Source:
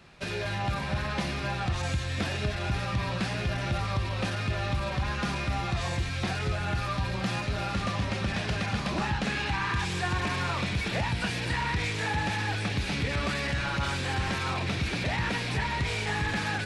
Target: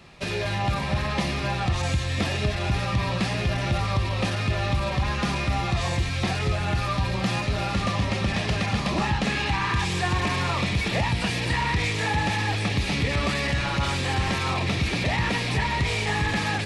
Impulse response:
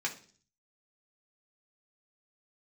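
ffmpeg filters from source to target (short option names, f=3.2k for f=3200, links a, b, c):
-af "bandreject=f=1.5k:w=6.4,volume=5dB"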